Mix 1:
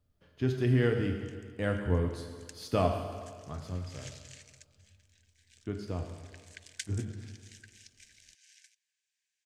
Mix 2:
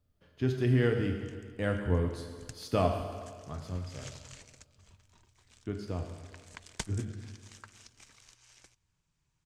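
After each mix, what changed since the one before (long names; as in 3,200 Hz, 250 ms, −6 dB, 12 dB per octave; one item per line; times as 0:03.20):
background: remove linear-phase brick-wall high-pass 1,500 Hz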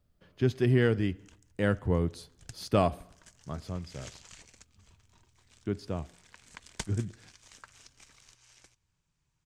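speech +7.0 dB
reverb: off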